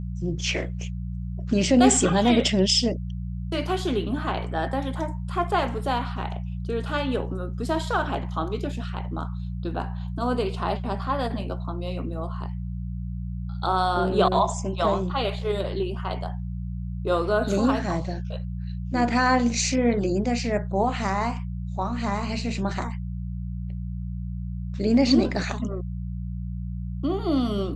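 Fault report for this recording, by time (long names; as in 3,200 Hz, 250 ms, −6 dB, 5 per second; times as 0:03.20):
mains hum 60 Hz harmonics 3 −31 dBFS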